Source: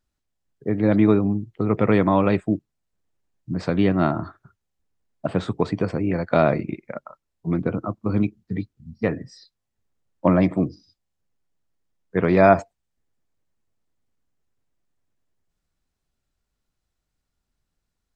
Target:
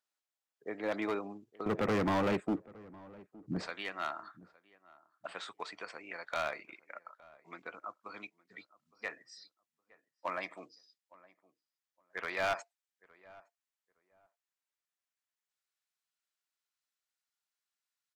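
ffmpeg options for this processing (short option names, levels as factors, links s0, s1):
-filter_complex "[0:a]asetnsamples=n=441:p=0,asendcmd='1.66 highpass f 210;3.67 highpass f 1300',highpass=680,volume=11.9,asoftclip=hard,volume=0.0841,asplit=2[s0][s1];[s1]adelay=864,lowpass=f=1300:p=1,volume=0.0891,asplit=2[s2][s3];[s3]adelay=864,lowpass=f=1300:p=1,volume=0.22[s4];[s0][s2][s4]amix=inputs=3:normalize=0,volume=0.531"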